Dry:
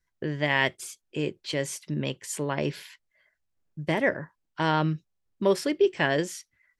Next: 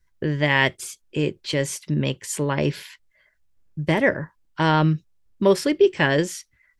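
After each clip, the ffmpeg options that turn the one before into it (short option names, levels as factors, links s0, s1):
-af "lowshelf=f=87:g=11.5,bandreject=f=700:w=12,volume=1.78"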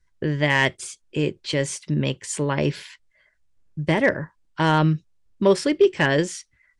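-af "volume=2.66,asoftclip=hard,volume=0.376,aresample=22050,aresample=44100"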